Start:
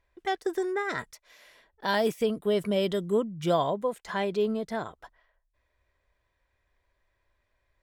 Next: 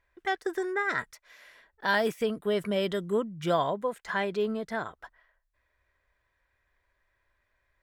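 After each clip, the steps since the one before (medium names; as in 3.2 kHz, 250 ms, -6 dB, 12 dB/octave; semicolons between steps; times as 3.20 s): peaking EQ 1.6 kHz +7.5 dB 1.1 oct; trim -2.5 dB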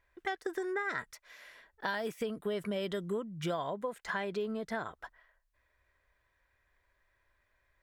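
compression 6:1, threshold -32 dBFS, peak gain reduction 11 dB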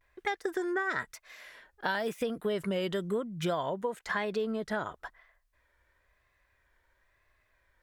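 vibrato 0.99 Hz 91 cents; trim +3.5 dB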